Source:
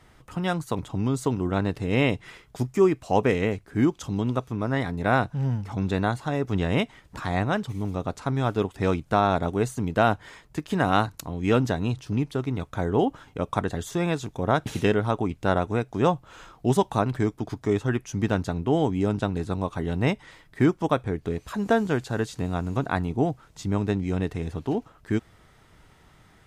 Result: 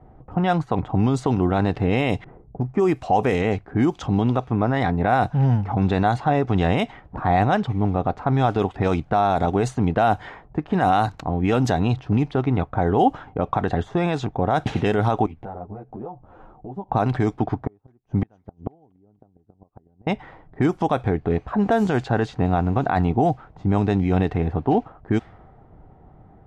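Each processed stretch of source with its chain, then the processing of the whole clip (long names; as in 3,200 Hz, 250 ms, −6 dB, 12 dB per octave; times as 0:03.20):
0:02.24–0:02.72: low-pass that shuts in the quiet parts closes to 340 Hz, open at −23.5 dBFS + bass and treble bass +2 dB, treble +7 dB + downward compressor 3 to 1, threshold −29 dBFS
0:15.26–0:16.89: downward compressor 5 to 1, threshold −37 dBFS + string-ensemble chorus
0:17.55–0:20.07: gate with flip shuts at −19 dBFS, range −41 dB + delay with a high-pass on its return 244 ms, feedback 53%, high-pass 3,200 Hz, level −13 dB
whole clip: low-pass that shuts in the quiet parts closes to 580 Hz, open at −17 dBFS; brickwall limiter −19.5 dBFS; parametric band 760 Hz +10 dB 0.29 octaves; level +8 dB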